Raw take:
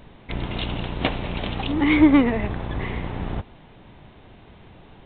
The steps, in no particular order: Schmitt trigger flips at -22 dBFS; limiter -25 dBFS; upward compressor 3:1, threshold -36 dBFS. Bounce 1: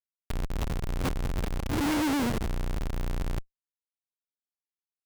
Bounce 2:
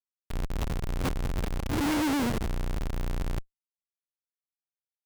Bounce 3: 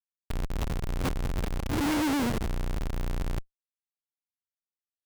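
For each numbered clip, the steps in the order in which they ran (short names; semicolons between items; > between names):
Schmitt trigger > limiter > upward compressor; Schmitt trigger > upward compressor > limiter; upward compressor > Schmitt trigger > limiter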